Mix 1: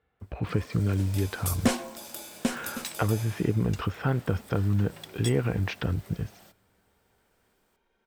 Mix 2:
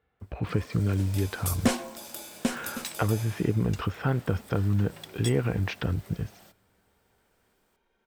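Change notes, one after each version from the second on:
nothing changed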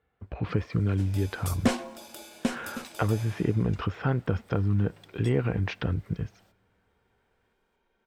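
first sound −9.0 dB
master: add high-shelf EQ 7,500 Hz −10 dB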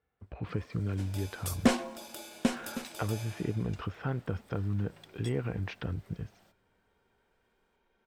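speech −7.0 dB

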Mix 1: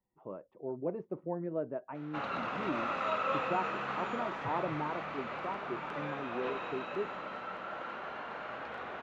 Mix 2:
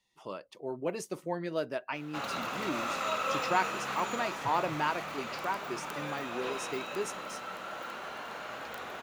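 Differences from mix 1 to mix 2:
speech: remove Bessel low-pass filter 630 Hz, order 2
master: remove low-pass filter 2,400 Hz 12 dB per octave

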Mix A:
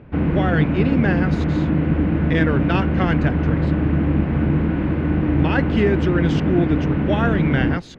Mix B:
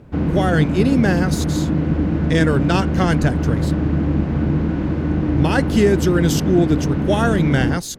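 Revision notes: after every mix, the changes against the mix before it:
speech +4.0 dB
master: remove low-pass with resonance 2,500 Hz, resonance Q 1.6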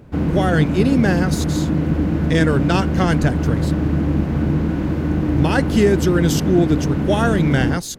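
background: remove high-frequency loss of the air 81 metres

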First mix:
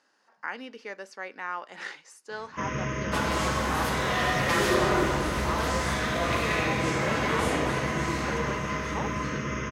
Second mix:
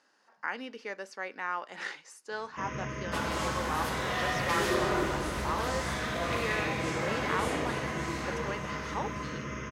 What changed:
first sound −6.5 dB
second sound −4.5 dB

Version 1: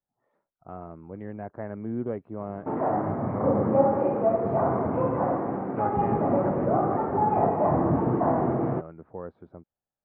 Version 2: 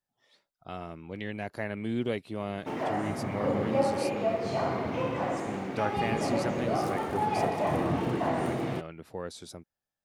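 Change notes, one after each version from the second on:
background −5.5 dB
master: remove low-pass filter 1,300 Hz 24 dB per octave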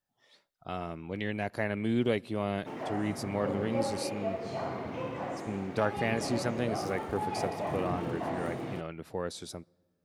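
background −6.0 dB
reverb: on, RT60 2.0 s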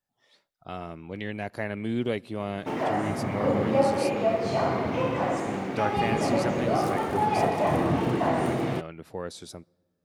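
background +10.0 dB

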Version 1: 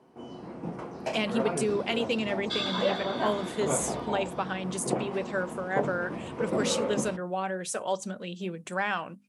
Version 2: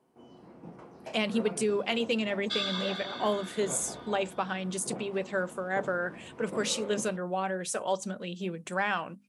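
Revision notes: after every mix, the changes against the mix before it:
first sound −10.5 dB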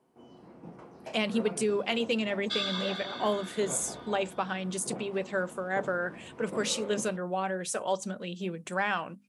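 nothing changed

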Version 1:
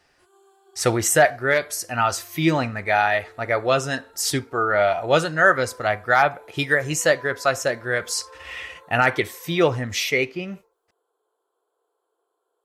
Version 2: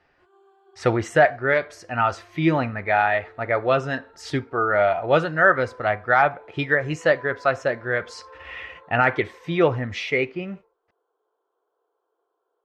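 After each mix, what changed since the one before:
master: add low-pass filter 2,500 Hz 12 dB per octave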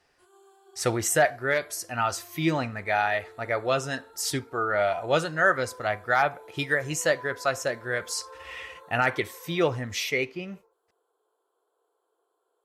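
speech −5.5 dB
master: remove low-pass filter 2,500 Hz 12 dB per octave

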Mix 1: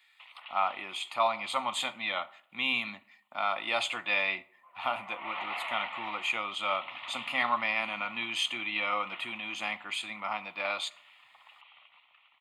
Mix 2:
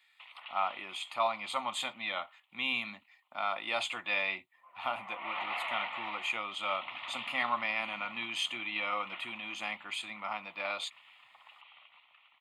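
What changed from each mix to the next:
reverb: off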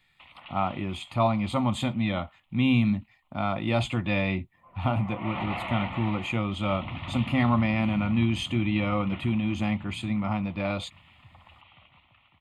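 master: remove high-pass filter 970 Hz 12 dB per octave

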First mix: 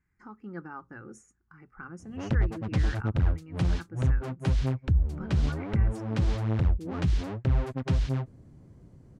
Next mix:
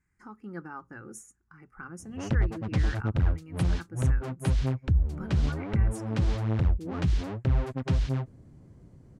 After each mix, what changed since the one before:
speech: remove high-frequency loss of the air 98 metres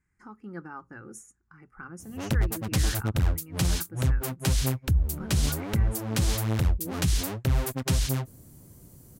background: remove head-to-tape spacing loss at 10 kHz 29 dB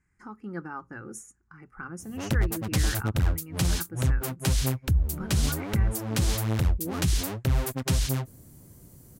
speech +3.5 dB

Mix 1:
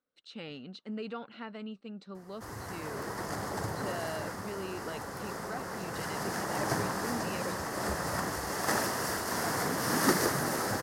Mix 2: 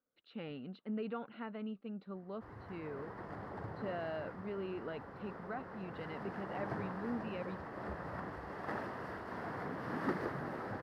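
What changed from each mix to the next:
background −8.0 dB
master: add high-frequency loss of the air 460 metres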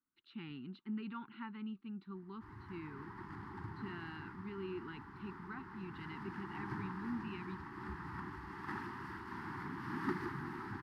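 master: add Chebyshev band-stop filter 370–880 Hz, order 3

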